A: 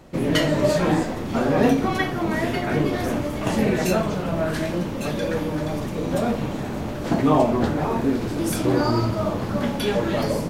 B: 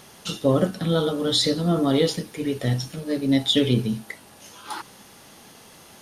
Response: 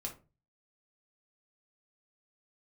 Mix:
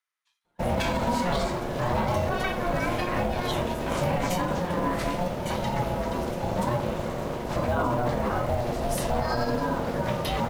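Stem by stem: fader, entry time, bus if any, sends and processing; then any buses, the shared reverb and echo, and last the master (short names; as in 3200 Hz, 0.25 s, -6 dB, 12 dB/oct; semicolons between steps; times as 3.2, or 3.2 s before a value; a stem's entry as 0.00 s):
-1.0 dB, 0.45 s, send -11.5 dB, short-mantissa float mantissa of 4-bit
-12.5 dB, 0.00 s, no send, resonant high-pass 1600 Hz, resonance Q 4.4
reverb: on, RT60 0.30 s, pre-delay 5 ms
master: gate -29 dBFS, range -28 dB; ring modulator 360 Hz; limiter -15.5 dBFS, peak gain reduction 9 dB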